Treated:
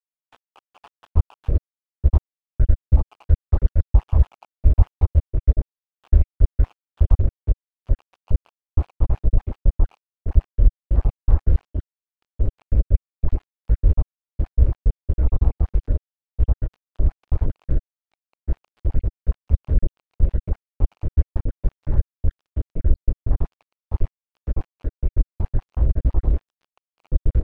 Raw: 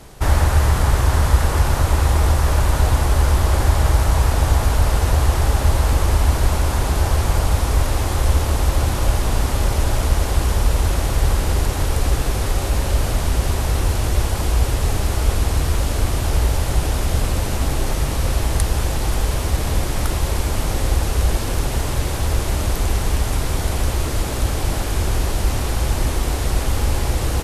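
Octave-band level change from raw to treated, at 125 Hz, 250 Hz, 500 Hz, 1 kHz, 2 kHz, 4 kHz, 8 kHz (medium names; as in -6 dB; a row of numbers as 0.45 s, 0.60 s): -4.0 dB, -8.5 dB, -12.5 dB, -20.5 dB, under -25 dB, under -30 dB, under -40 dB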